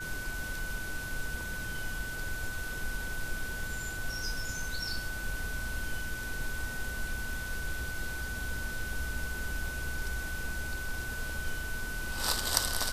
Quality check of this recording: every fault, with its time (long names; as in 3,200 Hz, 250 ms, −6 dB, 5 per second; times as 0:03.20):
whistle 1,500 Hz −38 dBFS